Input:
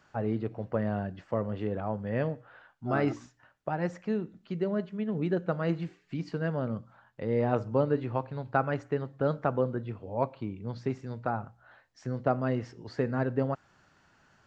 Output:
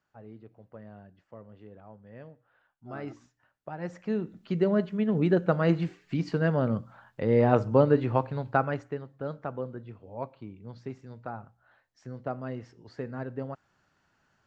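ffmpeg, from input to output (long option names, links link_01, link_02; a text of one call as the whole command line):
ffmpeg -i in.wav -af "volume=5.5dB,afade=type=in:start_time=2.33:duration=1.44:silence=0.316228,afade=type=in:start_time=3.77:duration=0.79:silence=0.237137,afade=type=out:start_time=8.21:duration=0.82:silence=0.237137" out.wav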